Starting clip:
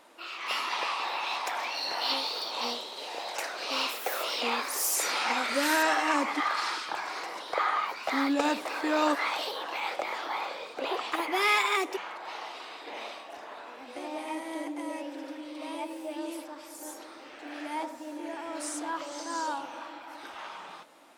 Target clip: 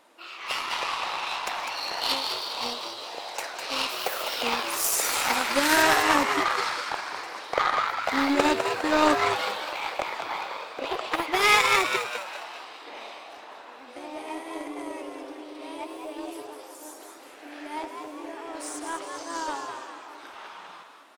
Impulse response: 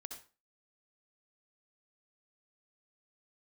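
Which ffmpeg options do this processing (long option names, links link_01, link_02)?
-filter_complex "[0:a]aeval=exprs='0.266*(cos(1*acos(clip(val(0)/0.266,-1,1)))-cos(1*PI/2))+0.0237*(cos(2*acos(clip(val(0)/0.266,-1,1)))-cos(2*PI/2))+0.015*(cos(3*acos(clip(val(0)/0.266,-1,1)))-cos(3*PI/2))+0.00376*(cos(4*acos(clip(val(0)/0.266,-1,1)))-cos(4*PI/2))+0.0188*(cos(7*acos(clip(val(0)/0.266,-1,1)))-cos(7*PI/2))':channel_layout=same,asplit=6[link_01][link_02][link_03][link_04][link_05][link_06];[link_02]adelay=203,afreqshift=100,volume=-6dB[link_07];[link_03]adelay=406,afreqshift=200,volume=-12.9dB[link_08];[link_04]adelay=609,afreqshift=300,volume=-19.9dB[link_09];[link_05]adelay=812,afreqshift=400,volume=-26.8dB[link_10];[link_06]adelay=1015,afreqshift=500,volume=-33.7dB[link_11];[link_01][link_07][link_08][link_09][link_10][link_11]amix=inputs=6:normalize=0,volume=7.5dB"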